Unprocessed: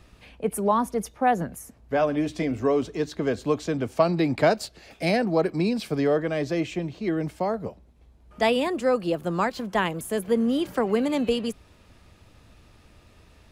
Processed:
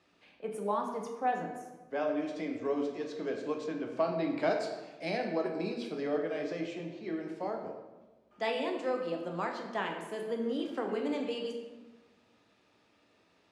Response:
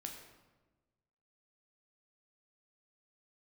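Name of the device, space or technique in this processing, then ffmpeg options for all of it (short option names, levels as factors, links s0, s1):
supermarket ceiling speaker: -filter_complex "[0:a]highpass=270,lowpass=6200[s0];[1:a]atrim=start_sample=2205[s1];[s0][s1]afir=irnorm=-1:irlink=0,asettb=1/sr,asplit=3[s2][s3][s4];[s2]atrim=end=3.644[s5];[s3]atrim=start=3.64:end=4.4,asetpts=PTS-STARTPTS,afade=t=in:d=0.004:c=qsin,afade=t=out:st=0.756:d=0.004:c=qsin,bass=f=250:g=1,treble=f=4000:g=-5[s6];[s4]atrim=start=4.396[s7];[s5][s6]acrossfade=d=0.004:c1=hsin:c2=qsin[s8];[s8][s7]acrossfade=d=0.004:c1=qsin:c2=hsin,volume=0.501"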